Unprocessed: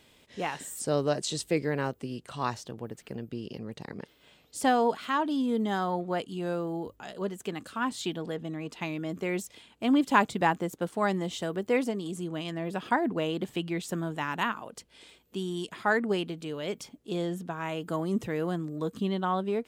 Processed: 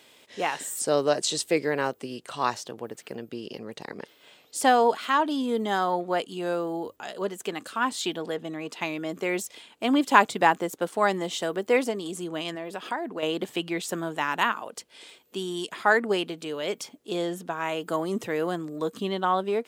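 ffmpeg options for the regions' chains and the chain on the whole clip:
ffmpeg -i in.wav -filter_complex "[0:a]asettb=1/sr,asplit=3[link_01][link_02][link_03];[link_01]atrim=end=12.554[link_04];[link_02]atrim=start=12.55:end=13.23,asetpts=PTS-STARTPTS,afade=type=in:duration=0.004:curve=qsin,afade=type=out:start_time=0.676:duration=0.004:curve=qsin,equalizer=frequency=69:width_type=o:width=1.4:gain=-13,acompressor=threshold=-37dB:ratio=2:attack=3.2:release=140:knee=1:detection=peak[link_05];[link_03]atrim=start=13.226[link_06];[link_04][link_05]acrossfade=duration=0.004:curve1=hsin:curve2=qsin[link_07];[link_07][link_06]acrossfade=duration=0.004:curve1=qsin:curve2=hsin,highpass=91,bass=frequency=250:gain=-12,treble=frequency=4000:gain=1,volume=5.5dB" out.wav

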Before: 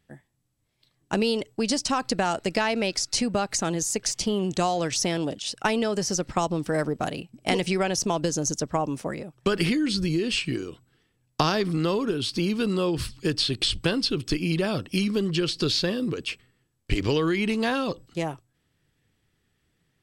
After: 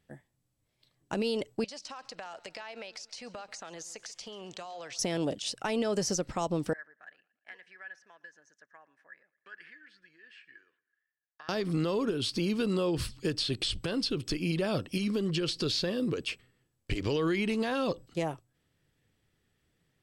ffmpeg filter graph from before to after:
ffmpeg -i in.wav -filter_complex "[0:a]asettb=1/sr,asplit=3[link_01][link_02][link_03];[link_01]atrim=end=1.644[link_04];[link_02]atrim=start=1.64:end=4.99,asetpts=PTS-STARTPTS,afade=type=in:duration=0.004:curve=qsin,afade=type=out:start_time=3.346:duration=0.004:curve=qsin,acrossover=split=580 6300:gain=0.158 1 0.224[link_05][link_06][link_07];[link_05][link_06][link_07]amix=inputs=3:normalize=0,acompressor=threshold=-36dB:ratio=16:attack=3.2:release=140:knee=1:detection=peak,aecho=1:1:137|274|411:0.1|0.045|0.0202,atrim=end_sample=147735[link_08];[link_03]atrim=start=4.986[link_09];[link_04][link_08]acrossfade=duration=0.004:curve1=hsin:curve2=qsin[link_10];[link_10][link_09]acrossfade=duration=0.004:curve1=qsin:curve2=hsin,asettb=1/sr,asplit=3[link_11][link_12][link_13];[link_11]atrim=end=6.734[link_14];[link_12]atrim=start=6.73:end=11.49,asetpts=PTS-STARTPTS,afade=type=in:duration=0.004:curve=qsin,afade=type=out:start_time=4.756:duration=0.004:curve=qsin,bandpass=frequency=1700:width_type=q:width=17,aecho=1:1:115|230|345:0.0794|0.031|0.0121,atrim=end_sample=209916[link_15];[link_13]atrim=start=11.486[link_16];[link_14][link_15]acrossfade=duration=0.004:curve1=hsin:curve2=qsin[link_17];[link_17][link_16]acrossfade=duration=0.004:curve1=qsin:curve2=hsin,equalizer=frequency=550:width_type=o:width=0.68:gain=3.5,alimiter=limit=-17dB:level=0:latency=1:release=117,volume=-3.5dB" out.wav

